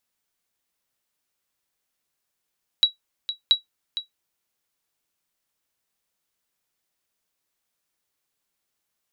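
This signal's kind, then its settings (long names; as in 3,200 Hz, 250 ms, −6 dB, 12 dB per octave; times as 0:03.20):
ping with an echo 3,890 Hz, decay 0.13 s, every 0.68 s, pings 2, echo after 0.46 s, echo −12 dB −7.5 dBFS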